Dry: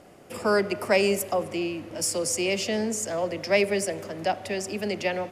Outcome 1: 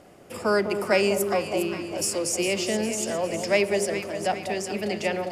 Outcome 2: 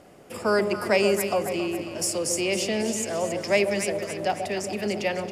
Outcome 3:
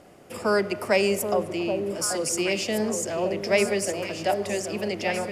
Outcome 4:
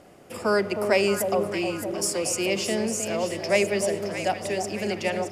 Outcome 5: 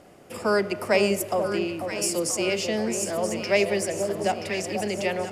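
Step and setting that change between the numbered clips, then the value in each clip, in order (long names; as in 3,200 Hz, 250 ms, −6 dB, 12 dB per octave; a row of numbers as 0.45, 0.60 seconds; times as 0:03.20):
delay that swaps between a low-pass and a high-pass, delay time: 203, 137, 780, 310, 489 milliseconds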